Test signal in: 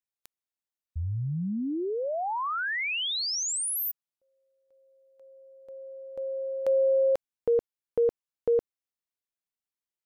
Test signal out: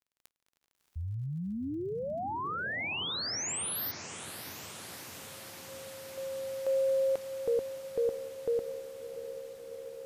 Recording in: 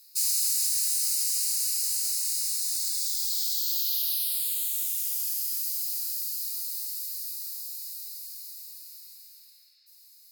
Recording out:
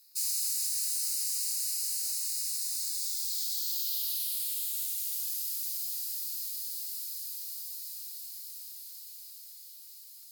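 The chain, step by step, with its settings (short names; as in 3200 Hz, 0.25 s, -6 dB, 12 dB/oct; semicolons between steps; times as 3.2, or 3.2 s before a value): diffused feedback echo 0.647 s, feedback 79%, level -11.5 dB; crackle 34/s -47 dBFS; gain -5.5 dB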